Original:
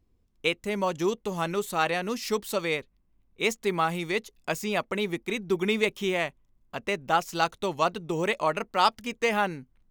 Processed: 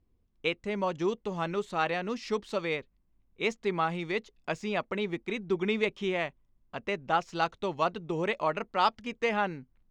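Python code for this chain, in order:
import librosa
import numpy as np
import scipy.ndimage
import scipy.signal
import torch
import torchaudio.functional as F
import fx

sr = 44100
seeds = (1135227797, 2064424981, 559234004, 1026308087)

y = fx.air_absorb(x, sr, metres=130.0)
y = F.gain(torch.from_numpy(y), -2.5).numpy()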